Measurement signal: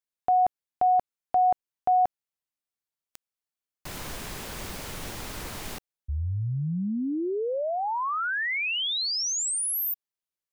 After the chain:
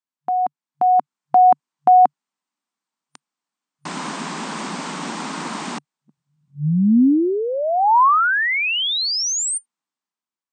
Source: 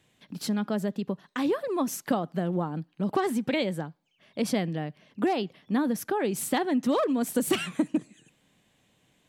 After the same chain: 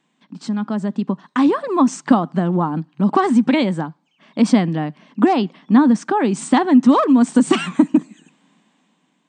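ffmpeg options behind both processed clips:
ffmpeg -i in.wav -af "afftfilt=real='re*between(b*sr/4096,140,9000)':imag='im*between(b*sr/4096,140,9000)':win_size=4096:overlap=0.75,dynaudnorm=framelen=410:gausssize=5:maxgain=10dB,equalizer=frequency=250:width_type=o:width=1:gain=10,equalizer=frequency=500:width_type=o:width=1:gain=-5,equalizer=frequency=1000:width_type=o:width=1:gain=10,volume=-3.5dB" out.wav

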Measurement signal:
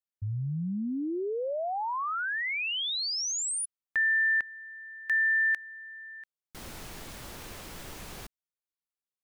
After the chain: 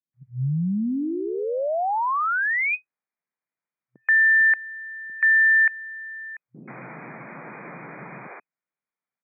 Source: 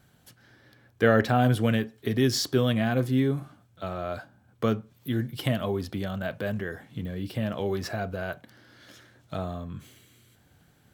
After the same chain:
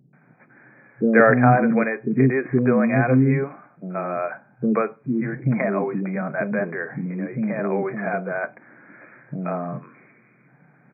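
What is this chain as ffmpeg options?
ffmpeg -i in.wav -filter_complex "[0:a]afftfilt=real='re*between(b*sr/4096,120,2500)':imag='im*between(b*sr/4096,120,2500)':win_size=4096:overlap=0.75,acrossover=split=380[link_01][link_02];[link_02]adelay=130[link_03];[link_01][link_03]amix=inputs=2:normalize=0,volume=8.5dB" out.wav

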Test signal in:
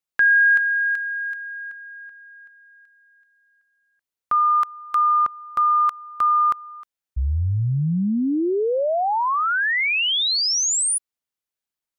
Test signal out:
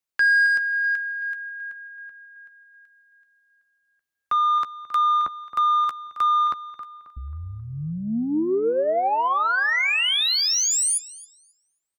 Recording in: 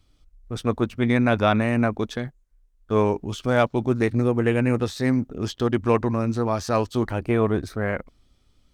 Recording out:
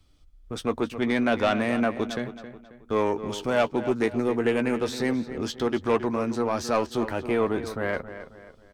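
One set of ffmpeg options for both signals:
ffmpeg -i in.wav -filter_complex "[0:a]acrossover=split=240|1400[link_01][link_02][link_03];[link_01]acompressor=threshold=-38dB:ratio=4:attack=21:release=157:knee=6[link_04];[link_04][link_02][link_03]amix=inputs=3:normalize=0,asoftclip=type=tanh:threshold=-15dB,asplit=2[link_05][link_06];[link_06]adelay=13,volume=-12dB[link_07];[link_05][link_07]amix=inputs=2:normalize=0,asplit=2[link_08][link_09];[link_09]adelay=269,lowpass=frequency=3600:poles=1,volume=-12dB,asplit=2[link_10][link_11];[link_11]adelay=269,lowpass=frequency=3600:poles=1,volume=0.41,asplit=2[link_12][link_13];[link_13]adelay=269,lowpass=frequency=3600:poles=1,volume=0.41,asplit=2[link_14][link_15];[link_15]adelay=269,lowpass=frequency=3600:poles=1,volume=0.41[link_16];[link_08][link_10][link_12][link_14][link_16]amix=inputs=5:normalize=0" out.wav

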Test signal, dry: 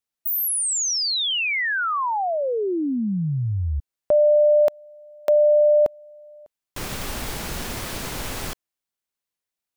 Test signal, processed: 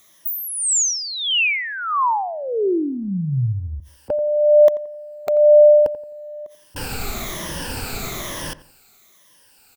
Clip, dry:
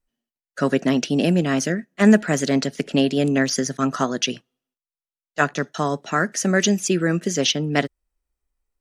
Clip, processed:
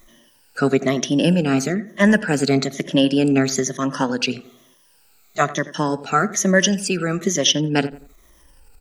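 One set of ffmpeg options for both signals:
ffmpeg -i in.wav -filter_complex "[0:a]afftfilt=real='re*pow(10,13/40*sin(2*PI*(1.2*log(max(b,1)*sr/1024/100)/log(2)-(-1.1)*(pts-256)/sr)))':imag='im*pow(10,13/40*sin(2*PI*(1.2*log(max(b,1)*sr/1024/100)/log(2)-(-1.1)*(pts-256)/sr)))':win_size=1024:overlap=0.75,acompressor=mode=upward:threshold=-26dB:ratio=2.5:attack=0.36:release=47:knee=2.83:detection=peak,asplit=2[link_01][link_02];[link_02]adelay=87,lowpass=frequency=1600:poles=1,volume=-15dB,asplit=2[link_03][link_04];[link_04]adelay=87,lowpass=frequency=1600:poles=1,volume=0.34,asplit=2[link_05][link_06];[link_06]adelay=87,lowpass=frequency=1600:poles=1,volume=0.34[link_07];[link_01][link_03][link_05][link_07]amix=inputs=4:normalize=0" out.wav

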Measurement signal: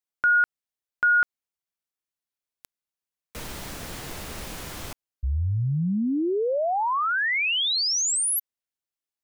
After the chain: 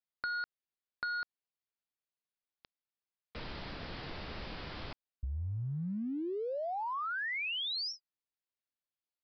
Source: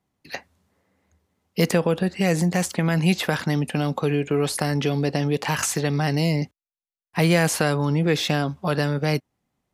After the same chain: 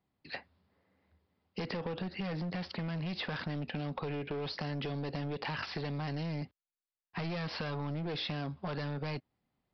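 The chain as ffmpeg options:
ffmpeg -i in.wav -af "aresample=11025,asoftclip=type=hard:threshold=-21.5dB,aresample=44100,acompressor=threshold=-31dB:ratio=6:attack=29:release=62:knee=6,volume=-5.5dB" out.wav

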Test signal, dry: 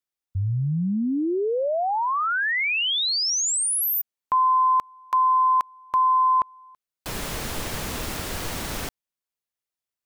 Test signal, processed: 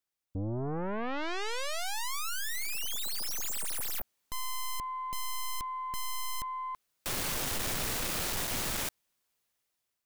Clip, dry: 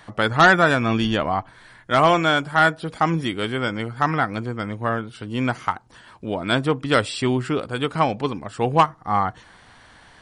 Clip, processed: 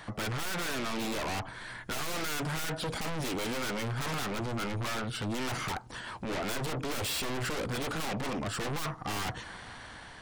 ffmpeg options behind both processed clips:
ffmpeg -i in.wav -af "dynaudnorm=framelen=500:gausssize=5:maxgain=11.5dB,aeval=exprs='(tanh(20*val(0)+0.65)-tanh(0.65))/20':channel_layout=same,aeval=exprs='0.0794*sin(PI/2*2.24*val(0)/0.0794)':channel_layout=same,volume=-7dB" out.wav

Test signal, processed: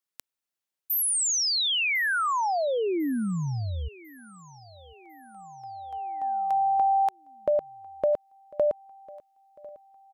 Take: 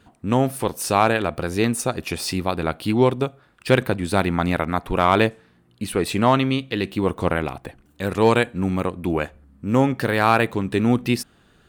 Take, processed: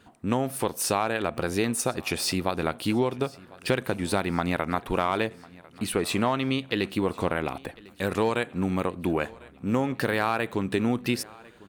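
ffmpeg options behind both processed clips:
ffmpeg -i in.wav -filter_complex "[0:a]lowshelf=frequency=140:gain=-7,acompressor=threshold=-21dB:ratio=6,asplit=2[link_01][link_02];[link_02]aecho=0:1:1049|2098|3147|4196:0.075|0.0405|0.0219|0.0118[link_03];[link_01][link_03]amix=inputs=2:normalize=0" out.wav

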